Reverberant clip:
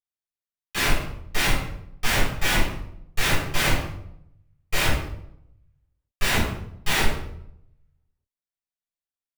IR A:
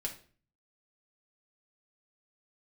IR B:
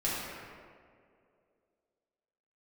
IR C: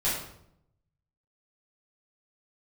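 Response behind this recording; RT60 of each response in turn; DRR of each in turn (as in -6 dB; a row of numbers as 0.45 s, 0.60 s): C; 0.45 s, 2.3 s, 0.70 s; -0.5 dB, -8.5 dB, -10.0 dB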